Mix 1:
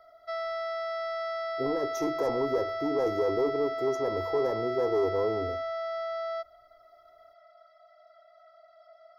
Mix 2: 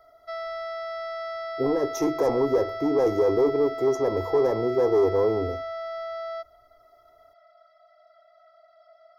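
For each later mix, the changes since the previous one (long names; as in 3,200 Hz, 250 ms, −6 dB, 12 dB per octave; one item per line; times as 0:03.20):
speech +6.5 dB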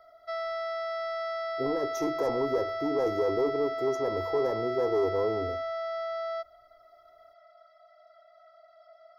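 speech −6.5 dB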